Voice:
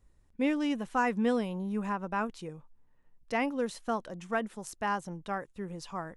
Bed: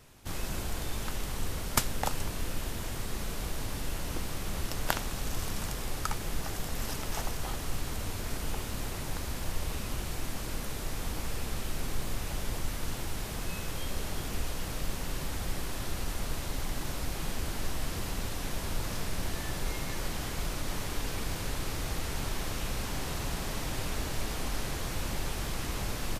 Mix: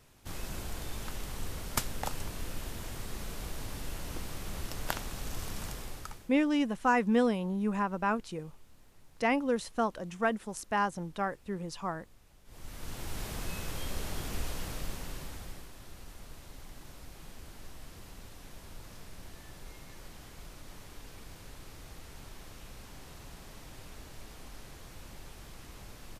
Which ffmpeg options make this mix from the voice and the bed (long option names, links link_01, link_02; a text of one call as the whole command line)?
ffmpeg -i stem1.wav -i stem2.wav -filter_complex "[0:a]adelay=5900,volume=2dB[link_01];[1:a]volume=20dB,afade=type=out:start_time=5.7:duration=0.63:silence=0.0794328,afade=type=in:start_time=12.45:duration=0.77:silence=0.0595662,afade=type=out:start_time=14.54:duration=1.17:silence=0.237137[link_02];[link_01][link_02]amix=inputs=2:normalize=0" out.wav